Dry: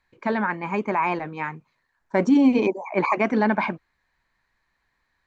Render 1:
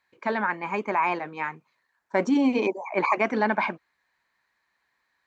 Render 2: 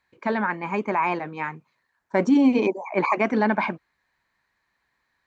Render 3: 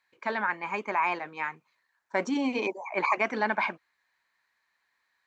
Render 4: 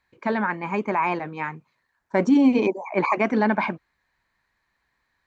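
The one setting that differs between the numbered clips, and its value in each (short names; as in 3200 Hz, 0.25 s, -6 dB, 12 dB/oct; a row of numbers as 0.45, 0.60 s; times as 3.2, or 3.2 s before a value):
HPF, cutoff: 410, 120, 1100, 42 Hz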